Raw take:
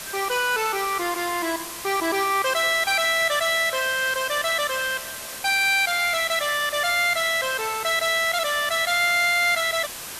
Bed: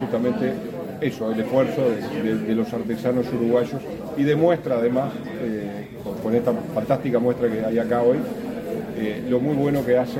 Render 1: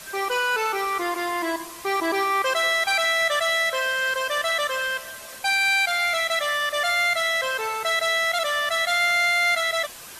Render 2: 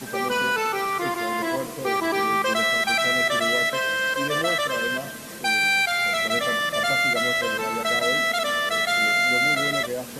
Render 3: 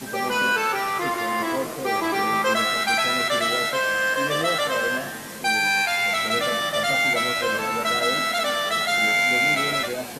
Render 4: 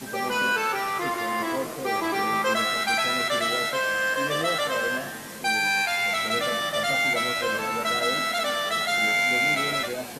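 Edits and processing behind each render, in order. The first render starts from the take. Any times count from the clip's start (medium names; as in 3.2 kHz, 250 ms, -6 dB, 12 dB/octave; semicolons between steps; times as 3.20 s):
noise reduction 7 dB, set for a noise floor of -35 dBFS
add bed -11.5 dB
doubling 19 ms -7 dB; frequency-shifting echo 103 ms, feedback 56%, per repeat +99 Hz, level -13 dB
trim -2.5 dB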